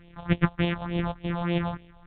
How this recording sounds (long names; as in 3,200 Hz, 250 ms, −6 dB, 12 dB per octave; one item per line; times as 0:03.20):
a buzz of ramps at a fixed pitch in blocks of 256 samples
phaser sweep stages 4, 3.4 Hz, lowest notch 320–1,400 Hz
A-law companding